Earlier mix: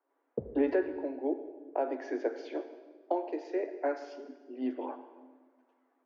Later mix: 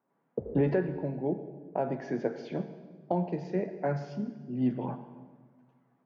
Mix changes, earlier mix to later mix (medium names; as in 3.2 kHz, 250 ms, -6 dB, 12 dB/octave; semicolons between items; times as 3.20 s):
speech: remove Chebyshev high-pass 260 Hz, order 10; background: send +7.5 dB